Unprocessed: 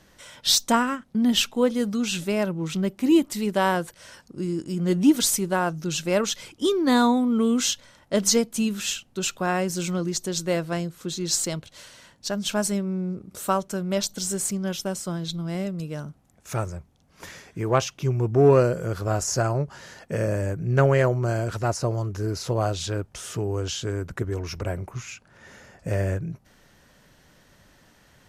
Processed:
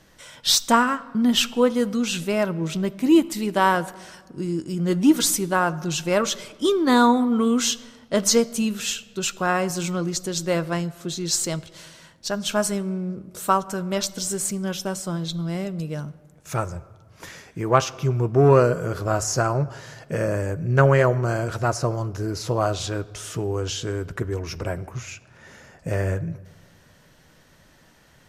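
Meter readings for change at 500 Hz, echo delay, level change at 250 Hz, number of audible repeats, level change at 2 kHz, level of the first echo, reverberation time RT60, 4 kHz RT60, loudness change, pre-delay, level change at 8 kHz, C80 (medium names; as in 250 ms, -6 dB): +2.0 dB, no echo, +1.5 dB, no echo, +3.5 dB, no echo, 1.5 s, 0.95 s, +2.0 dB, 6 ms, +1.0 dB, 20.5 dB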